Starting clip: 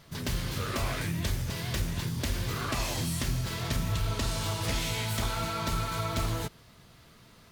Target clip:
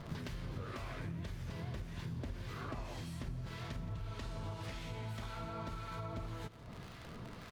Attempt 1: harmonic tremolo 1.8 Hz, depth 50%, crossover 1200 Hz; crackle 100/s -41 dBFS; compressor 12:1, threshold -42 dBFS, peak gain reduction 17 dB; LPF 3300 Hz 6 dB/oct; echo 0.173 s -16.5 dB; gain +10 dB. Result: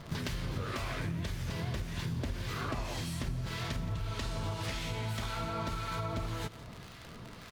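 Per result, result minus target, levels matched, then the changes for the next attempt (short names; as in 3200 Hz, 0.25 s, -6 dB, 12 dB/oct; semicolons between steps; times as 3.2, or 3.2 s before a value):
compressor: peak gain reduction -6.5 dB; 4000 Hz band +3.0 dB
change: compressor 12:1, threshold -49 dBFS, peak gain reduction 23 dB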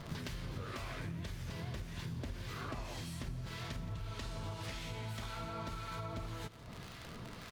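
4000 Hz band +3.5 dB
change: LPF 1600 Hz 6 dB/oct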